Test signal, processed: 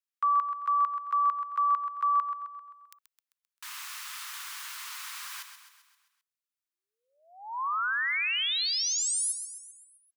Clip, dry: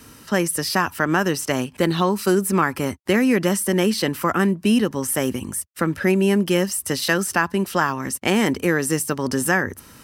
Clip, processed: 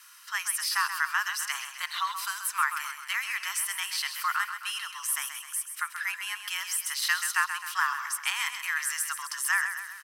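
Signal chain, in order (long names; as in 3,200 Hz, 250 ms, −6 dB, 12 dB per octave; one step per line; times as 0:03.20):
Butterworth high-pass 960 Hz 48 dB per octave
frequency shifter +54 Hz
on a send: repeating echo 131 ms, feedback 53%, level −9 dB
on the sum: level −4.5 dB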